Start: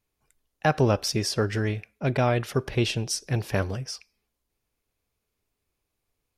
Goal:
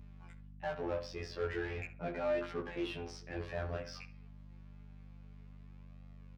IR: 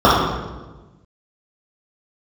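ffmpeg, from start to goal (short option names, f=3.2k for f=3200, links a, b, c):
-filter_complex "[0:a]afftfilt=real='hypot(re,im)*cos(PI*b)':imag='0':win_size=2048:overlap=0.75,areverse,acompressor=threshold=-41dB:ratio=10,areverse,alimiter=level_in=11dB:limit=-24dB:level=0:latency=1:release=470,volume=-11dB,asoftclip=type=hard:threshold=-39dB,adynamicsmooth=sensitivity=4:basefreq=2.8k,asplit=2[a][b];[b]highpass=f=720:p=1,volume=15dB,asoftclip=type=tanh:threshold=-39dB[c];[a][c]amix=inputs=2:normalize=0,lowpass=f=4.1k:p=1,volume=-6dB,bandreject=f=250.4:t=h:w=4,bandreject=f=500.8:t=h:w=4,bandreject=f=751.2:t=h:w=4,bandreject=f=1.0016k:t=h:w=4,bandreject=f=1.252k:t=h:w=4,bandreject=f=1.5024k:t=h:w=4,flanger=delay=16.5:depth=5.2:speed=0.41,aeval=exprs='val(0)+0.000562*(sin(2*PI*50*n/s)+sin(2*PI*2*50*n/s)/2+sin(2*PI*3*50*n/s)/3+sin(2*PI*4*50*n/s)/4+sin(2*PI*5*50*n/s)/5)':c=same,asplit=2[d][e];[e]adelay=66,lowpass=f=2k:p=1,volume=-11dB,asplit=2[f][g];[g]adelay=66,lowpass=f=2k:p=1,volume=0.32,asplit=2[h][i];[i]adelay=66,lowpass=f=2k:p=1,volume=0.32[j];[f][h][j]amix=inputs=3:normalize=0[k];[d][k]amix=inputs=2:normalize=0,volume=14.5dB"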